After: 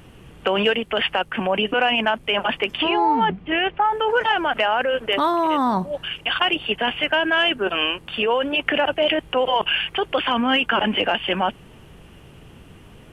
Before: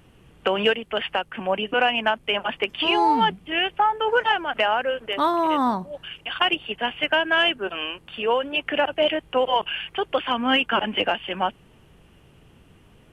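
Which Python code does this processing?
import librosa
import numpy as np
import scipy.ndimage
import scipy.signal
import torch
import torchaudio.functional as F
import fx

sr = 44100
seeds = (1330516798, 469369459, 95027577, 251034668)

p1 = fx.lowpass(x, sr, hz=2400.0, slope=12, at=(2.77, 3.83), fade=0.02)
p2 = fx.over_compress(p1, sr, threshold_db=-27.0, ratio=-0.5)
y = p1 + (p2 * 10.0 ** (-2.0 / 20.0))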